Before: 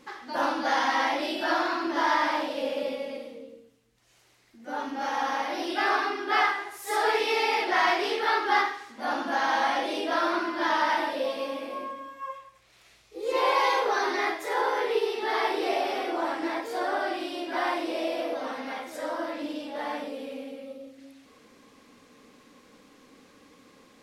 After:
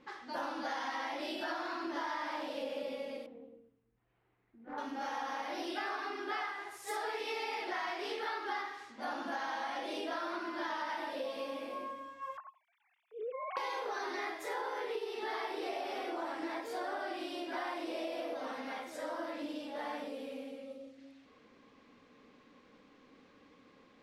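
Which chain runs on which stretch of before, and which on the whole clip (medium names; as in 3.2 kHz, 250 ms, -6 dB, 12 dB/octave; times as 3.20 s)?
3.26–4.78 s: tape spacing loss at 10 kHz 45 dB + band-stop 580 Hz, Q 7.3 + loudspeaker Doppler distortion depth 0.27 ms
12.37–13.57 s: formants replaced by sine waves + compression 5:1, threshold -31 dBFS
whole clip: compression, threshold -29 dBFS; level-controlled noise filter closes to 3 kHz, open at -34 dBFS; trim -6 dB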